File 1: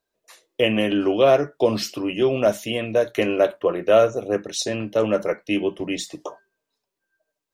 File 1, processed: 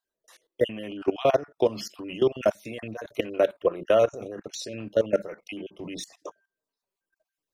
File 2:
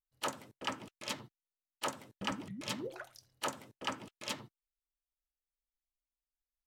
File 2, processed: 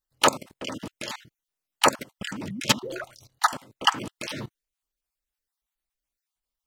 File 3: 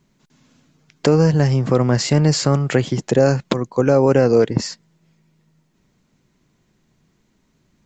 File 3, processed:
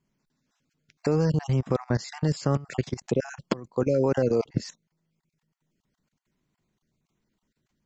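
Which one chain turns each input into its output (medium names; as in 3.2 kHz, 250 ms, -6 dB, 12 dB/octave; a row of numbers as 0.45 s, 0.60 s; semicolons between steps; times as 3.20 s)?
random holes in the spectrogram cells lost 26%; level held to a coarse grid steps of 18 dB; normalise loudness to -27 LUFS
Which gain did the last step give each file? 0.0 dB, +20.0 dB, -4.0 dB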